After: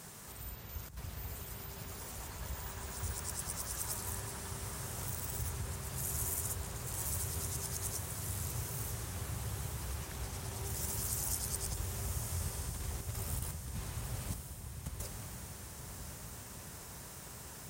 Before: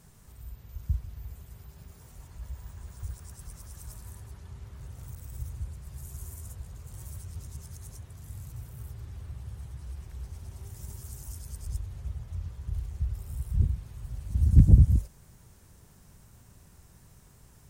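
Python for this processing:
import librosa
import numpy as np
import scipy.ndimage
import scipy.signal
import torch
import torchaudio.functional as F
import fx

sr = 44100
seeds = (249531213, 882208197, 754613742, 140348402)

y = fx.over_compress(x, sr, threshold_db=-33.0, ratio=-0.5)
y = fx.highpass(y, sr, hz=390.0, slope=6)
y = fx.echo_diffused(y, sr, ms=1040, feedback_pct=54, wet_db=-6.0)
y = F.gain(torch.from_numpy(y), 6.0).numpy()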